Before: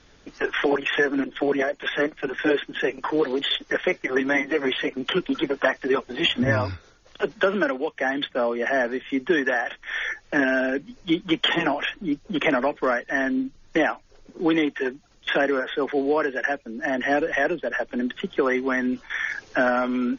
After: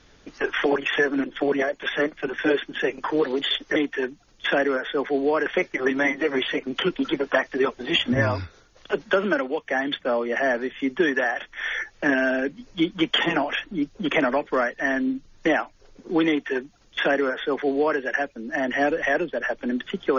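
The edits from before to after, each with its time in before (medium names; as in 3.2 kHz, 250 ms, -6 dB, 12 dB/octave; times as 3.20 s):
14.59–16.29 s: copy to 3.76 s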